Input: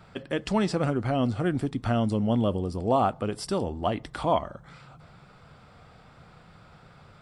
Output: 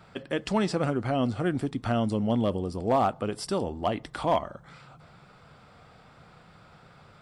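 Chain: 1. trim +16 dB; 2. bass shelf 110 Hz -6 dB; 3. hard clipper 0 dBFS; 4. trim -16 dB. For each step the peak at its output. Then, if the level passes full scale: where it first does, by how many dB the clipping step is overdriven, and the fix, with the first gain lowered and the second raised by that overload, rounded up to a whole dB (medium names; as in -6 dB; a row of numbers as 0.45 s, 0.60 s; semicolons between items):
+4.5 dBFS, +4.5 dBFS, 0.0 dBFS, -16.0 dBFS; step 1, 4.5 dB; step 1 +11 dB, step 4 -11 dB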